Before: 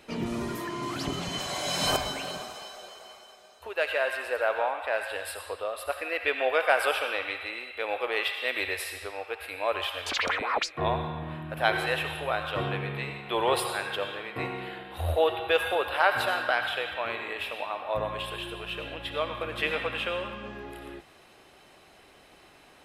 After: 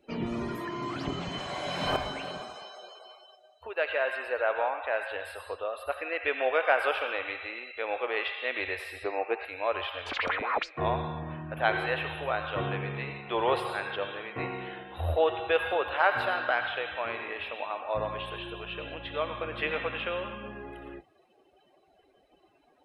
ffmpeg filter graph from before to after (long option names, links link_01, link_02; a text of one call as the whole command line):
ffmpeg -i in.wav -filter_complex "[0:a]asettb=1/sr,asplit=3[link_01][link_02][link_03];[link_01]atrim=end=9.044[link_04];[link_02]atrim=start=9.04:end=9.45,asetpts=PTS-STARTPTS,afade=type=in:duration=0.004:curve=qsin,afade=type=out:start_time=0.406:duration=0.004:curve=qsin,acontrast=32,highpass=150,equalizer=frequency=230:width_type=q:width=4:gain=5,equalizer=frequency=340:width_type=q:width=4:gain=7,equalizer=frequency=730:width_type=q:width=4:gain=4,equalizer=frequency=1400:width_type=q:width=4:gain=-5,equalizer=frequency=3300:width_type=q:width=4:gain=-10,equalizer=frequency=5400:width_type=q:width=4:gain=-6,lowpass=frequency=5800:width=0.5412,lowpass=frequency=5800:width=1.3066[link_05];[link_03]atrim=start=9.446[link_06];[link_04][link_05]acrossfade=duration=0.004:curve1=hsin:curve2=qsin[link_07];[link_07][link_06]acrossfade=duration=0.004:curve1=qsin:curve2=hsin,afftdn=noise_reduction=21:noise_floor=-49,acrossover=split=3300[link_08][link_09];[link_09]acompressor=threshold=-52dB:ratio=4:attack=1:release=60[link_10];[link_08][link_10]amix=inputs=2:normalize=0,volume=-1dB" out.wav